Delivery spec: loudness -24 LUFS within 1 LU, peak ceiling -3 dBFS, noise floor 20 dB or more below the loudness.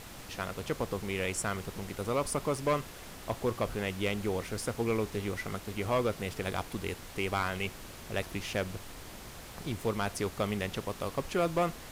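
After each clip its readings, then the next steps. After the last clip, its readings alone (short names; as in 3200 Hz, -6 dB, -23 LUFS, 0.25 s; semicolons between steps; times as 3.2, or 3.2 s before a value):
clipped 0.7%; flat tops at -22.0 dBFS; noise floor -47 dBFS; noise floor target -54 dBFS; loudness -34.0 LUFS; peak -22.0 dBFS; loudness target -24.0 LUFS
-> clip repair -22 dBFS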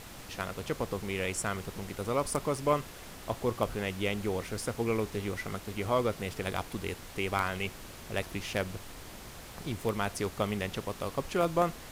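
clipped 0.0%; noise floor -47 dBFS; noise floor target -54 dBFS
-> noise print and reduce 7 dB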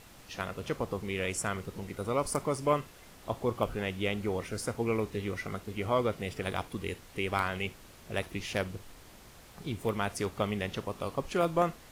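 noise floor -54 dBFS; loudness -33.5 LUFS; peak -13.0 dBFS; loudness target -24.0 LUFS
-> gain +9.5 dB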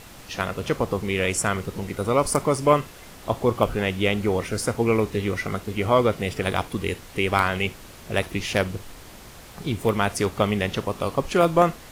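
loudness -24.0 LUFS; peak -3.5 dBFS; noise floor -44 dBFS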